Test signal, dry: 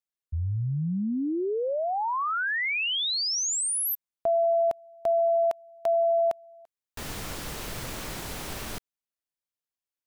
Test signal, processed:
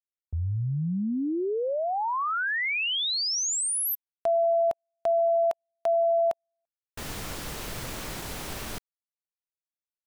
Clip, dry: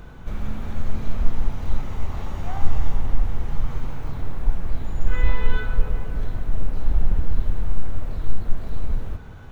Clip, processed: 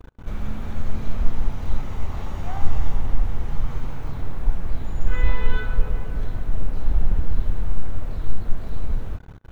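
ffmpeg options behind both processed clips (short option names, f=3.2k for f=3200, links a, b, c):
-af "agate=range=-32dB:threshold=-40dB:ratio=16:release=20:detection=rms"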